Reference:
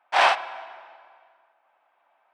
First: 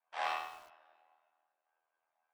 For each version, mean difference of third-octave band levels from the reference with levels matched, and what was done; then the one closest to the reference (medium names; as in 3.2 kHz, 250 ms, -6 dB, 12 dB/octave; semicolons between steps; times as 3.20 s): 5.0 dB: chord resonator C3 sus4, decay 0.52 s; ring modulator 40 Hz; bit-crushed delay 102 ms, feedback 35%, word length 9-bit, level -8 dB; trim +1 dB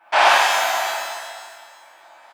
13.0 dB: compression 6:1, threshold -29 dBFS, peak gain reduction 14.5 dB; delay 496 ms -20.5 dB; pitch-shifted reverb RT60 1.2 s, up +12 st, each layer -8 dB, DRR -8.5 dB; trim +9 dB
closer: first